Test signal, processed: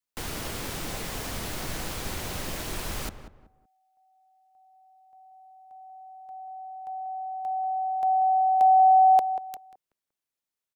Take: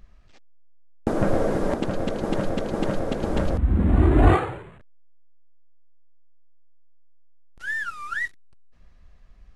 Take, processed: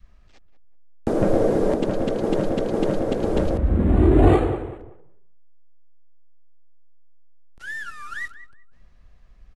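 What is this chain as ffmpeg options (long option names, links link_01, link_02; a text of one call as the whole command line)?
ffmpeg -i in.wav -filter_complex "[0:a]adynamicequalizer=threshold=0.0178:dfrequency=430:dqfactor=1.3:tfrequency=430:tqfactor=1.3:attack=5:release=100:ratio=0.375:range=3:mode=boostabove:tftype=bell,acrossover=split=330|980|1900[link_01][link_02][link_03][link_04];[link_03]acompressor=threshold=-44dB:ratio=6[link_05];[link_01][link_02][link_05][link_04]amix=inputs=4:normalize=0,asplit=2[link_06][link_07];[link_07]adelay=188,lowpass=frequency=1400:poles=1,volume=-10dB,asplit=2[link_08][link_09];[link_09]adelay=188,lowpass=frequency=1400:poles=1,volume=0.31,asplit=2[link_10][link_11];[link_11]adelay=188,lowpass=frequency=1400:poles=1,volume=0.31[link_12];[link_06][link_08][link_10][link_12]amix=inputs=4:normalize=0" out.wav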